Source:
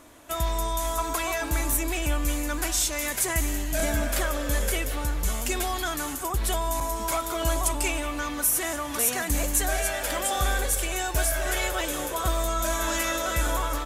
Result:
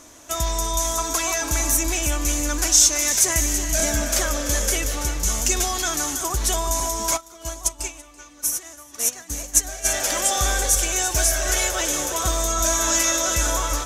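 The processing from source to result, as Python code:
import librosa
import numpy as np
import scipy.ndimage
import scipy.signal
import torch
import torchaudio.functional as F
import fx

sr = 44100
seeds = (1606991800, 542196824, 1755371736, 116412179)

y = fx.peak_eq(x, sr, hz=6100.0, db=14.5, octaves=0.64)
y = y + 10.0 ** (-11.0 / 20.0) * np.pad(y, (int(334 * sr / 1000.0), 0))[:len(y)]
y = fx.upward_expand(y, sr, threshold_db=-28.0, expansion=2.5, at=(7.16, 9.84), fade=0.02)
y = y * 10.0 ** (2.0 / 20.0)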